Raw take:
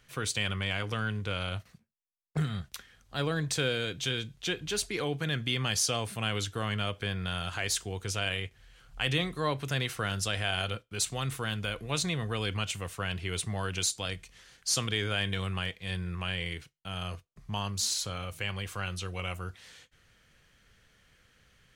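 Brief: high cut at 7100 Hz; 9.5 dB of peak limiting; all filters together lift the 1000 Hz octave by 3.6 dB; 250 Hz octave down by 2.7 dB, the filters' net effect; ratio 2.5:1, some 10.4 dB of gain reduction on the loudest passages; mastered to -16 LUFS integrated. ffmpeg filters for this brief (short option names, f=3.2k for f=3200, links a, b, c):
-af "lowpass=7.1k,equalizer=f=250:t=o:g=-4.5,equalizer=f=1k:t=o:g=5,acompressor=threshold=-40dB:ratio=2.5,volume=27dB,alimiter=limit=-4.5dB:level=0:latency=1"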